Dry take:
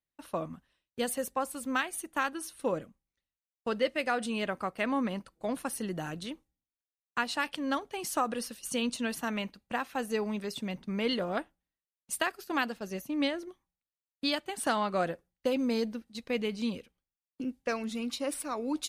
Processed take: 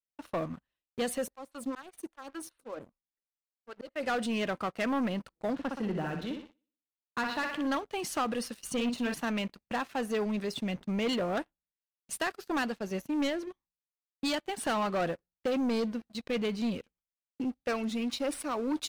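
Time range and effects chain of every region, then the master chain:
0:01.27–0:04.03: parametric band 4,200 Hz +4 dB 0.36 octaves + volume swells 265 ms + phaser with staggered stages 5 Hz
0:05.53–0:07.67: high-frequency loss of the air 230 metres + flutter between parallel walls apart 10.5 metres, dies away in 0.56 s
0:08.73–0:09.14: high-shelf EQ 4,700 Hz −10.5 dB + double-tracking delay 46 ms −8 dB
whole clip: high-shelf EQ 7,800 Hz −11 dB; leveller curve on the samples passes 3; level −7.5 dB

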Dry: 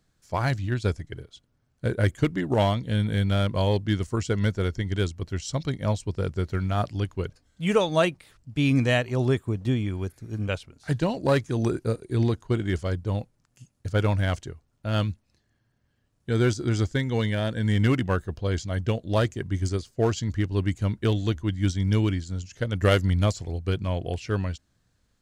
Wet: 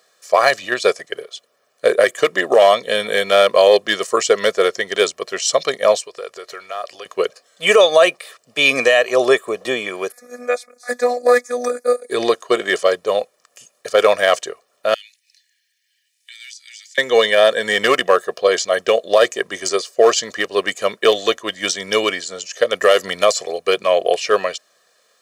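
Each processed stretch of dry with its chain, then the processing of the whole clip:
0:05.99–0:07.06: parametric band 180 Hz −13 dB 1.6 octaves + downward compressor 8 to 1, threshold −39 dBFS
0:10.12–0:12.10: phases set to zero 245 Hz + phaser with its sweep stopped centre 600 Hz, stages 8
0:14.94–0:16.98: elliptic high-pass filter 2,000 Hz, stop band 50 dB + downward compressor 2.5 to 1, threshold −60 dBFS
whole clip: high-pass filter 370 Hz 24 dB per octave; comb filter 1.7 ms, depth 76%; boost into a limiter +16 dB; level −1 dB

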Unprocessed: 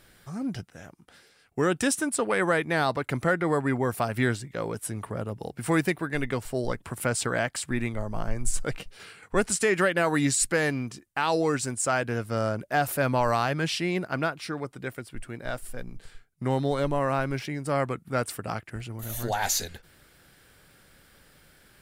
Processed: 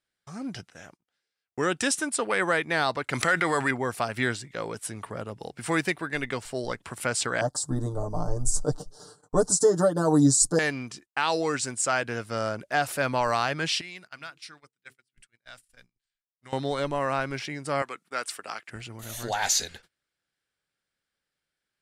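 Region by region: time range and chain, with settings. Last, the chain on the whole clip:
0:03.13–0:03.71: tilt shelving filter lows −5.5 dB, about 1,100 Hz + envelope flattener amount 70%
0:07.41–0:10.59: Chebyshev band-stop filter 920–5,800 Hz + low-shelf EQ 470 Hz +7.5 dB + comb filter 6.7 ms, depth 89%
0:13.81–0:16.53: guitar amp tone stack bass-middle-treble 5-5-5 + hum removal 65.08 Hz, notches 7
0:17.82–0:18.69: high-pass filter 430 Hz + dynamic equaliser 610 Hz, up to −6 dB, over −41 dBFS, Q 1
whole clip: low-pass filter 7,000 Hz 12 dB per octave; noise gate −49 dBFS, range −28 dB; spectral tilt +2 dB per octave

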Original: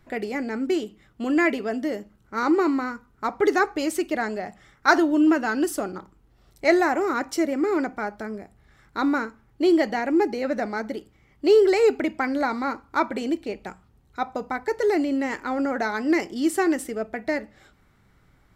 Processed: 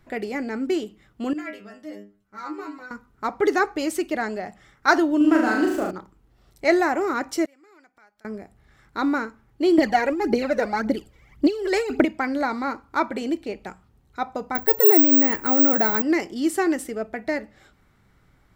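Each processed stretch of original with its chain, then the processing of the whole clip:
0:01.33–0:02.91: parametric band 350 Hz −5.5 dB 0.72 octaves + stiff-string resonator 100 Hz, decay 0.35 s, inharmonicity 0.002
0:05.17–0:05.91: running median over 9 samples + flutter between parallel walls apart 6.4 metres, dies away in 0.73 s
0:07.45–0:08.25: tilt shelving filter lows −8.5 dB, about 920 Hz + gate with flip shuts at −31 dBFS, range −27 dB
0:09.78–0:12.05: compressor whose output falls as the input rises −21 dBFS + phase shifter 1.8 Hz, delay 2.2 ms, feedback 65%
0:14.55–0:16.02: low-shelf EQ 480 Hz +7 dB + bad sample-rate conversion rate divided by 2×, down none, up zero stuff
whole clip: no processing

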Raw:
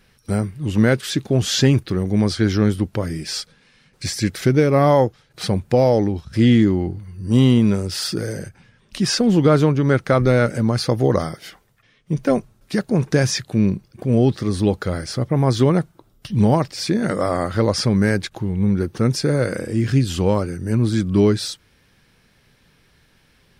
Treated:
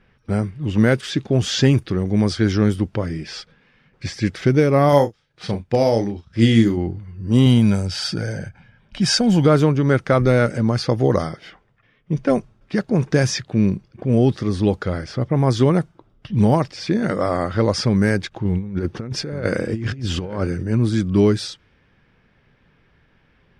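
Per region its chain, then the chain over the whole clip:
0:04.89–0:06.77: high-shelf EQ 3,600 Hz +9.5 dB + double-tracking delay 35 ms −7.5 dB + expander for the loud parts, over −34 dBFS
0:07.46–0:09.46: high-shelf EQ 4,700 Hz +4.5 dB + comb filter 1.3 ms, depth 50%
0:18.45–0:20.63: compressor whose output falls as the input rises −22 dBFS, ratio −0.5 + single-tap delay 872 ms −16 dB
whole clip: notch filter 4,100 Hz, Q 14; low-pass that shuts in the quiet parts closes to 2,400 Hz, open at −10 dBFS

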